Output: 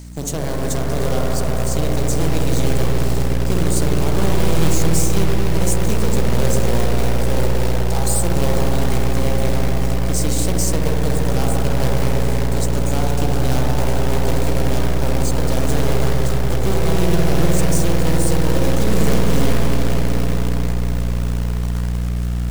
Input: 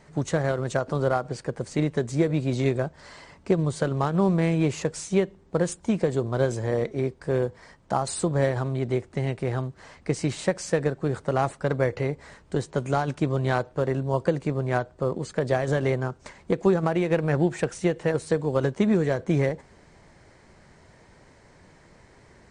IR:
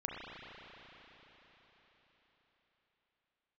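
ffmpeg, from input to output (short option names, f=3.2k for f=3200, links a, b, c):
-filter_complex "[0:a]aeval=exprs='0.335*(cos(1*acos(clip(val(0)/0.335,-1,1)))-cos(1*PI/2))+0.0668*(cos(6*acos(clip(val(0)/0.335,-1,1)))-cos(6*PI/2))+0.00668*(cos(7*acos(clip(val(0)/0.335,-1,1)))-cos(7*PI/2))+0.00422*(cos(8*acos(clip(val(0)/0.335,-1,1)))-cos(8*PI/2))':c=same,aeval=exprs='val(0)+0.02*(sin(2*PI*60*n/s)+sin(2*PI*2*60*n/s)/2+sin(2*PI*3*60*n/s)/3+sin(2*PI*4*60*n/s)/4+sin(2*PI*5*60*n/s)/5)':c=same,acrossover=split=1100[a][b];[b]alimiter=level_in=3.5dB:limit=-24dB:level=0:latency=1:release=78,volume=-3.5dB[c];[a][c]amix=inputs=2:normalize=0,bass=f=250:g=1,treble=f=4k:g=5,crystalizer=i=7.5:c=0,equalizer=f=1.7k:w=1:g=-4.5[d];[1:a]atrim=start_sample=2205,asetrate=27342,aresample=44100[e];[d][e]afir=irnorm=-1:irlink=0,areverse,acompressor=mode=upward:threshold=-14dB:ratio=2.5,areverse,acrusher=bits=4:mode=log:mix=0:aa=0.000001,volume=-6dB"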